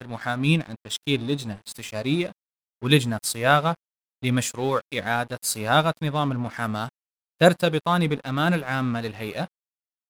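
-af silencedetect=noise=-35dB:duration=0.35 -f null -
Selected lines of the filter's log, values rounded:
silence_start: 2.31
silence_end: 2.83 | silence_duration: 0.51
silence_start: 3.74
silence_end: 4.23 | silence_duration: 0.49
silence_start: 6.89
silence_end: 7.41 | silence_duration: 0.52
silence_start: 9.46
silence_end: 10.10 | silence_duration: 0.64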